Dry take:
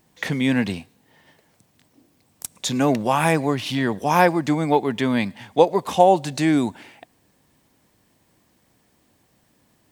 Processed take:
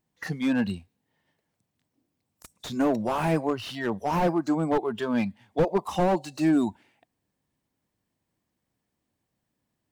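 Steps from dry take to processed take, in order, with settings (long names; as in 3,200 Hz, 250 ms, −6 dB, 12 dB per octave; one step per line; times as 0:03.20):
noise reduction from a noise print of the clip's start 15 dB
bass and treble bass +3 dB, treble −1 dB
slew-rate limiting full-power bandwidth 91 Hz
level −3.5 dB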